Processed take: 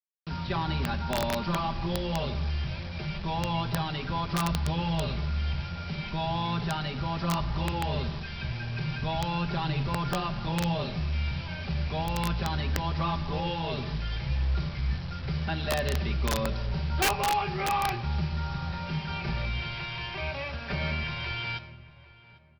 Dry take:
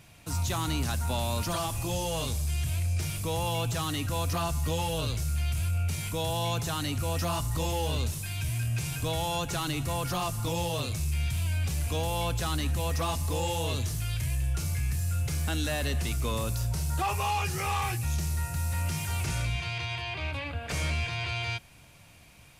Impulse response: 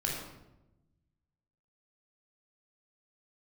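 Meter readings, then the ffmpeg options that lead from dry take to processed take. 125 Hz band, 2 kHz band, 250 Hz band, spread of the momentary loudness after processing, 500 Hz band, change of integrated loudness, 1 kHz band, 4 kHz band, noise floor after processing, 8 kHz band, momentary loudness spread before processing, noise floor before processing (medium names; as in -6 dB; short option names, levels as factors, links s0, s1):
-1.0 dB, +1.5 dB, +3.5 dB, 6 LU, -0.5 dB, -0.5 dB, +2.5 dB, -0.5 dB, -46 dBFS, -8.5 dB, 2 LU, -53 dBFS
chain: -filter_complex "[0:a]aemphasis=mode=reproduction:type=75fm,aecho=1:1:5.1:0.96,aresample=11025,acrusher=bits=6:mix=0:aa=0.000001,aresample=44100,asplit=2[s0][s1];[s1]adelay=798,lowpass=f=2100:p=1,volume=0.112,asplit=2[s2][s3];[s3]adelay=798,lowpass=f=2100:p=1,volume=0.3,asplit=2[s4][s5];[s5]adelay=798,lowpass=f=2100:p=1,volume=0.3[s6];[s0][s2][s4][s6]amix=inputs=4:normalize=0,asplit=2[s7][s8];[1:a]atrim=start_sample=2205,highshelf=f=5500:g=7[s9];[s8][s9]afir=irnorm=-1:irlink=0,volume=0.2[s10];[s7][s10]amix=inputs=2:normalize=0,aeval=exprs='(mod(6.68*val(0)+1,2)-1)/6.68':c=same,volume=0.75"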